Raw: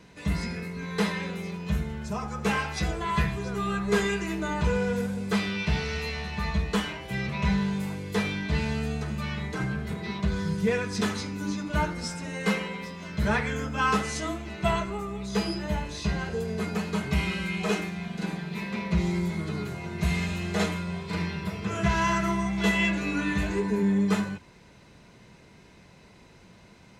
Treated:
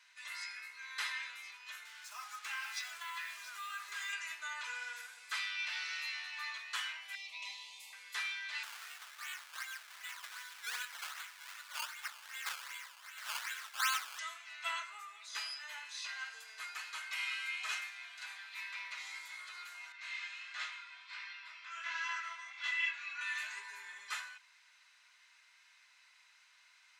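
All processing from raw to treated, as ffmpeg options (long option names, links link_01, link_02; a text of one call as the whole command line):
ffmpeg -i in.wav -filter_complex "[0:a]asettb=1/sr,asplit=3[link_01][link_02][link_03];[link_01]atrim=end=1.854[link_04];[link_02]atrim=start=1.85:end=4.13,asetpts=PTS-STARTPTS,afade=type=in:duration=0.004:curve=qsin,afade=type=out:start_time=2.276:duration=0.004:curve=qsin,acrusher=bits=6:mix=0:aa=0.5,lowshelf=frequency=220:gain=-10,acompressor=threshold=-29dB:ratio=4:attack=3.2:release=140:knee=1:detection=peak[link_05];[link_03]atrim=start=4.126[link_06];[link_04][link_05]acrossfade=duration=0.004:curve1=hsin:curve2=qsin[link_07];[link_07][link_06]acrossfade=duration=0.004:curve1=qsin:curve2=hsin,asettb=1/sr,asplit=3[link_08][link_09][link_10];[link_08]atrim=end=7.154[link_11];[link_09]atrim=start=7.15:end=7.93,asetpts=PTS-STARTPTS,afade=type=in:duration=0.004:curve=qsin,afade=type=out:start_time=0.776:duration=0.004:curve=qsin,asuperstop=centerf=1500:order=4:qfactor=0.94,lowshelf=frequency=160:gain=-10.5[link_12];[link_10]atrim=start=7.926[link_13];[link_11][link_12]acrossfade=duration=0.004:curve1=hsin:curve2=qsin[link_14];[link_14][link_13]acrossfade=duration=0.004:curve1=qsin:curve2=hsin,asettb=1/sr,asplit=3[link_15][link_16][link_17];[link_15]atrim=end=8.634[link_18];[link_16]atrim=start=8.63:end=14.19,asetpts=PTS-STARTPTS,afade=type=in:duration=0.004:curve=qsin,afade=type=out:start_time=5.556:duration=0.004:curve=qsin,lowshelf=frequency=480:gain=-5.5,acrusher=samples=16:mix=1:aa=0.000001:lfo=1:lforange=16:lforate=2.6[link_19];[link_17]atrim=start=14.186[link_20];[link_18][link_19]acrossfade=duration=0.004:curve1=hsin:curve2=qsin[link_21];[link_21][link_20]acrossfade=duration=0.004:curve1=qsin:curve2=hsin,asettb=1/sr,asplit=3[link_22][link_23][link_24];[link_22]atrim=end=19.924[link_25];[link_23]atrim=start=19.92:end=23.21,asetpts=PTS-STARTPTS,afade=type=in:duration=0.004:curve=qsin,afade=type=out:start_time=3.286:duration=0.004:curve=qsin,highpass=720,lowpass=4900,flanger=delay=17.5:depth=4:speed=1.4[link_26];[link_24]atrim=start=23.206[link_27];[link_25][link_26]acrossfade=duration=0.004:curve1=hsin:curve2=qsin[link_28];[link_28][link_27]acrossfade=duration=0.004:curve1=qsin:curve2=hsin,highpass=frequency=1300:width=0.5412,highpass=frequency=1300:width=1.3066,highshelf=frequency=11000:gain=-3.5,volume=-4.5dB" out.wav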